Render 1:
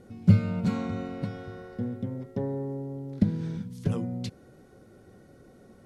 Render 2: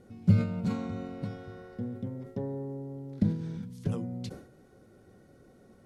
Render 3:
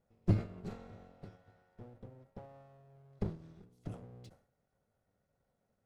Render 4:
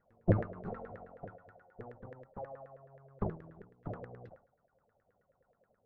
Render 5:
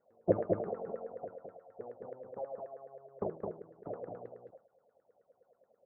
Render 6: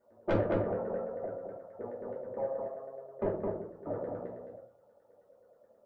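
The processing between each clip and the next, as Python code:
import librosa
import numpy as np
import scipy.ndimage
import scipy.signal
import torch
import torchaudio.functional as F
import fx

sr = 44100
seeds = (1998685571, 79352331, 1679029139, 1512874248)

y1 = fx.dynamic_eq(x, sr, hz=2000.0, q=0.73, threshold_db=-47.0, ratio=4.0, max_db=-3)
y1 = fx.sustainer(y1, sr, db_per_s=100.0)
y1 = y1 * 10.0 ** (-4.0 / 20.0)
y2 = fx.lower_of_two(y1, sr, delay_ms=1.5)
y2 = fx.upward_expand(y2, sr, threshold_db=-50.0, expansion=1.5)
y2 = y2 * 10.0 ** (-5.0 / 20.0)
y3 = fx.filter_lfo_lowpass(y2, sr, shape='saw_down', hz=9.4, low_hz=450.0, high_hz=1800.0, q=7.6)
y4 = fx.bandpass_q(y3, sr, hz=510.0, q=1.7)
y4 = y4 + 10.0 ** (-3.5 / 20.0) * np.pad(y4, (int(214 * sr / 1000.0), 0))[:len(y4)]
y4 = y4 * 10.0 ** (5.5 / 20.0)
y5 = 10.0 ** (-28.0 / 20.0) * np.tanh(y4 / 10.0 ** (-28.0 / 20.0))
y5 = fx.room_shoebox(y5, sr, seeds[0], volume_m3=210.0, walls='furnished', distance_m=2.6)
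y5 = y5 * 10.0 ** (1.5 / 20.0)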